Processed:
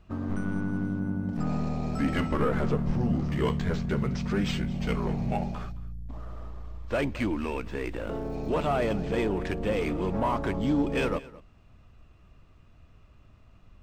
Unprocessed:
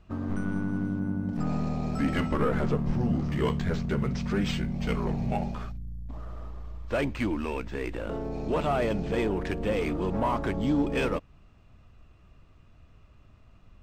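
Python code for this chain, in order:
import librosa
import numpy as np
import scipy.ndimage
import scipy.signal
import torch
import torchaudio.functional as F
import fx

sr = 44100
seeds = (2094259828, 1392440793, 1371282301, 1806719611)

p1 = fx.dmg_crackle(x, sr, seeds[0], per_s=220.0, level_db=-51.0, at=(7.64, 9.01), fade=0.02)
y = p1 + fx.echo_single(p1, sr, ms=217, db=-19.5, dry=0)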